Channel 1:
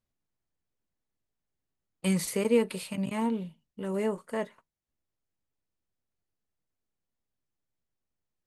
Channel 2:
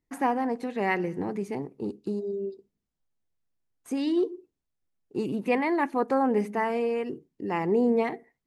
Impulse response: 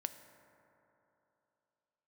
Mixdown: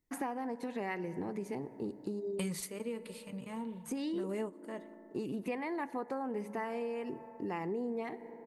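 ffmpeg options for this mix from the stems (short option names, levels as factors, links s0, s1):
-filter_complex "[0:a]adelay=350,volume=1.12,asplit=2[s0][s1];[s1]volume=0.188[s2];[1:a]highshelf=f=8700:g=6,volume=0.501,asplit=3[s3][s4][s5];[s4]volume=0.708[s6];[s5]apad=whole_len=388683[s7];[s0][s7]sidechaingate=range=0.0794:threshold=0.00158:ratio=16:detection=peak[s8];[2:a]atrim=start_sample=2205[s9];[s2][s6]amix=inputs=2:normalize=0[s10];[s10][s9]afir=irnorm=-1:irlink=0[s11];[s8][s3][s11]amix=inputs=3:normalize=0,acompressor=threshold=0.0178:ratio=5"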